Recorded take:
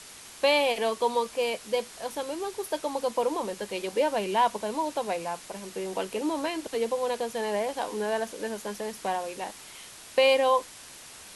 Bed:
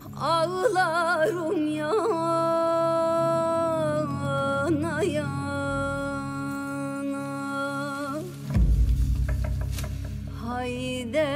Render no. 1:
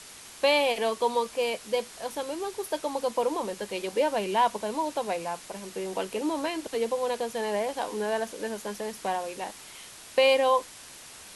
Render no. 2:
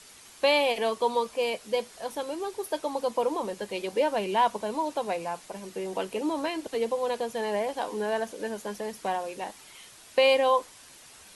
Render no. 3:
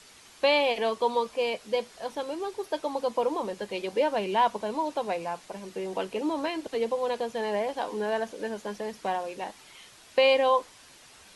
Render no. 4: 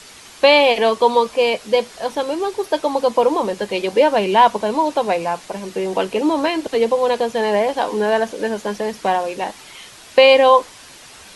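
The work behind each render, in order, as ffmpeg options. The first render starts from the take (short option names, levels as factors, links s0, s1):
-af anull
-af "afftdn=nr=6:nf=-47"
-filter_complex "[0:a]acrossover=split=6500[s0][s1];[s1]acompressor=threshold=0.00112:ratio=4:attack=1:release=60[s2];[s0][s2]amix=inputs=2:normalize=0"
-af "volume=3.76,alimiter=limit=0.891:level=0:latency=1"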